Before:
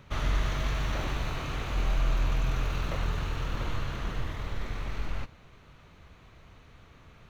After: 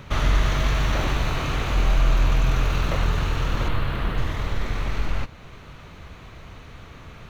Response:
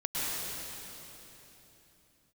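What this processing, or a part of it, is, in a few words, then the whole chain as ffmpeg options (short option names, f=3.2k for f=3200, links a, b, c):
parallel compression: -filter_complex "[0:a]asettb=1/sr,asplit=3[a][b][c];[a]atrim=end=3.684[d];[b]atrim=start=3.68:end=4.18,asetpts=PTS-STARTPTS,afade=t=in:d=0.004:c=qsin,afade=t=out:st=0.496:d=0.004:c=qsin,equalizer=f=6.3k:t=o:w=0.63:g=-13.5[e];[c]atrim=start=4.176[f];[d][e]acrossfade=d=0.004:c1=hsin:c2=qsin[g];[g][f]acrossfade=d=0.004:c1=qsin:c2=hsin,asplit=2[h][i];[i]acompressor=threshold=-41dB:ratio=6,volume=-3dB[j];[h][j]amix=inputs=2:normalize=0,volume=7dB"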